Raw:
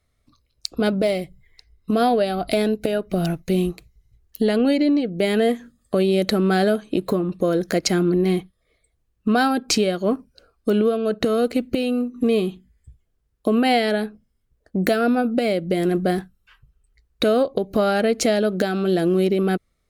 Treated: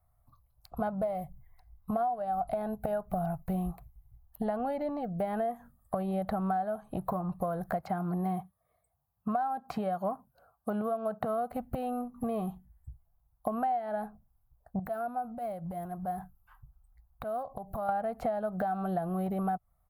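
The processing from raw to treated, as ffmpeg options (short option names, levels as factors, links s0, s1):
-filter_complex "[0:a]asettb=1/sr,asplit=3[s0][s1][s2];[s0]atrim=end=7.824[s3];[s1]atrim=start=7.82:end=11.51,asetpts=PTS-STARTPTS,afade=t=in:d=0.004:c=qsin,afade=t=out:st=3.686:d=0.004:c=qsin,highpass=120[s4];[s2]atrim=start=11.506[s5];[s3][s4]acrossfade=d=0.004:c1=hsin:c2=qsin[s6];[s6][s5]acrossfade=d=0.004:c1=qsin:c2=hsin,asettb=1/sr,asplit=3[s7][s8][s9];[s7]atrim=end=14.794[s10];[s8]atrim=start=14.79:end=17.89,asetpts=PTS-STARTPTS,afade=t=in:d=0.004:c=qsin,afade=t=out:st=3.096:d=0.004:c=qsin,acompressor=threshold=0.0355:ratio=6:attack=3.2:release=140:knee=1:detection=peak[s11];[s9]atrim=start=17.886[s12];[s10][s11]acrossfade=d=0.004:c1=hsin:c2=qsin[s13];[s13][s12]acrossfade=d=0.004:c1=qsin:c2=hsin,acrossover=split=4100[s14][s15];[s15]acompressor=threshold=0.00316:ratio=4:attack=1:release=60[s16];[s14][s16]amix=inputs=2:normalize=0,firequalizer=gain_entry='entry(130,0);entry(310,-21);entry(460,-15);entry(740,8);entry(1400,-6);entry(2400,-22);entry(5900,-23);entry(12000,5)':delay=0.05:min_phase=1,acompressor=threshold=0.0398:ratio=12"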